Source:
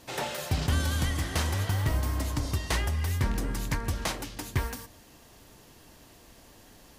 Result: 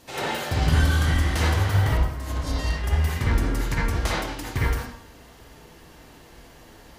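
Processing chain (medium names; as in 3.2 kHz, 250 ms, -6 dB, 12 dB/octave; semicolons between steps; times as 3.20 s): 1.97–2.84 s: compressor with a negative ratio -33 dBFS, ratio -0.5; reverberation RT60 0.55 s, pre-delay 43 ms, DRR -6 dB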